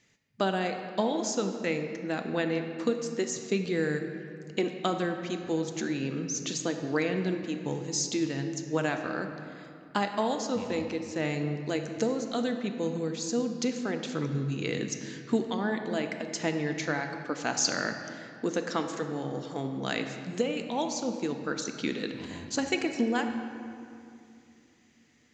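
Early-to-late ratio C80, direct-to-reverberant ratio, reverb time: 7.5 dB, 5.5 dB, 2.6 s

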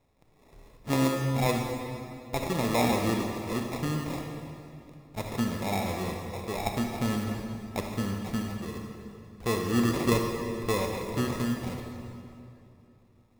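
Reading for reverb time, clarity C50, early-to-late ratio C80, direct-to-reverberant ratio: 2.8 s, 3.0 dB, 4.0 dB, 2.0 dB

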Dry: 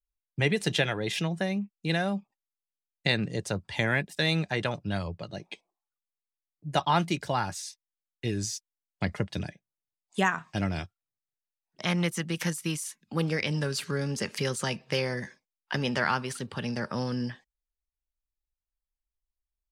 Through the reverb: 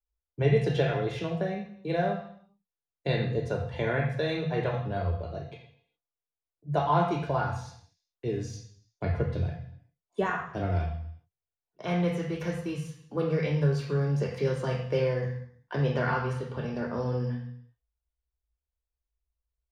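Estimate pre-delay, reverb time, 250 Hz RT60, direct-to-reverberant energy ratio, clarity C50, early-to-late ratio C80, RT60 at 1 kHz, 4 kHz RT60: 3 ms, 0.65 s, n/a, -0.5 dB, 5.5 dB, 8.0 dB, 0.65 s, 0.70 s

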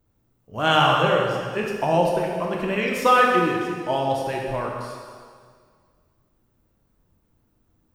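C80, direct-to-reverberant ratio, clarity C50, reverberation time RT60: 3.0 dB, -1.5 dB, 1.0 dB, 1.9 s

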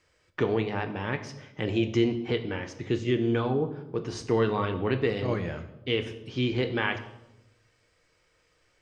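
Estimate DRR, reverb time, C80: 7.0 dB, 0.90 s, 14.0 dB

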